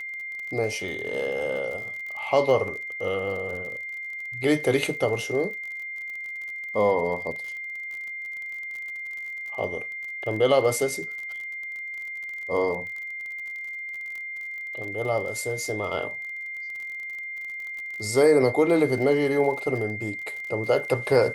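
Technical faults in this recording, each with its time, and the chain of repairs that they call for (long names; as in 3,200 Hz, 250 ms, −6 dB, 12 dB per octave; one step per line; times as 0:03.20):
surface crackle 41 per second −34 dBFS
whistle 2,100 Hz −32 dBFS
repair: click removal
notch filter 2,100 Hz, Q 30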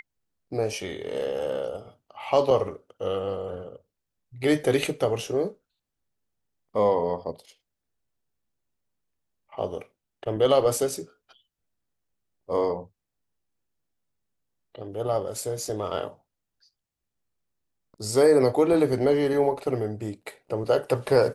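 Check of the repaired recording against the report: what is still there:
none of them is left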